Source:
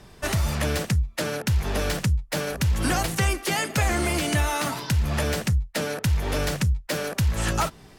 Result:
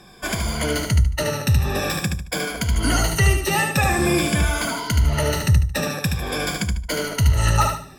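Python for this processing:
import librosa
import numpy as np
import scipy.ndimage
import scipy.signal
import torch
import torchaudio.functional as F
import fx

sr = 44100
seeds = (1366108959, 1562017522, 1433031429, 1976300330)

y = fx.spec_ripple(x, sr, per_octave=1.8, drift_hz=-0.48, depth_db=16)
y = fx.low_shelf(y, sr, hz=190.0, db=10.0, at=(3.98, 4.56))
y = fx.echo_feedback(y, sr, ms=74, feedback_pct=31, wet_db=-5)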